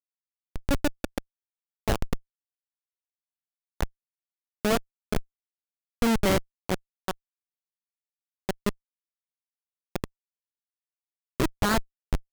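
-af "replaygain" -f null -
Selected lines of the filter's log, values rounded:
track_gain = +9.9 dB
track_peak = 0.125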